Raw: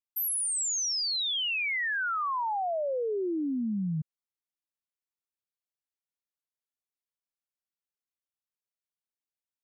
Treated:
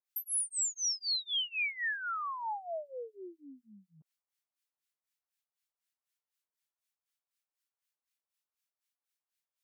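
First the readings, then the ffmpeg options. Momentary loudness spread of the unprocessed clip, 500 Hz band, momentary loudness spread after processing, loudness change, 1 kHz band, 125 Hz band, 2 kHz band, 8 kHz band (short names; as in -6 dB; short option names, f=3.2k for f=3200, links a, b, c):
4 LU, -12.0 dB, 15 LU, -4.0 dB, -7.5 dB, -30.0 dB, -5.5 dB, -4.0 dB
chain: -filter_complex "[0:a]alimiter=level_in=11dB:limit=-24dB:level=0:latency=1,volume=-11dB,acrossover=split=1200[a][b];[a]aeval=exprs='val(0)*(1-1/2+1/2*cos(2*PI*4*n/s))':c=same[c];[b]aeval=exprs='val(0)*(1-1/2-1/2*cos(2*PI*4*n/s))':c=same[d];[c][d]amix=inputs=2:normalize=0,highpass=780,volume=8dB"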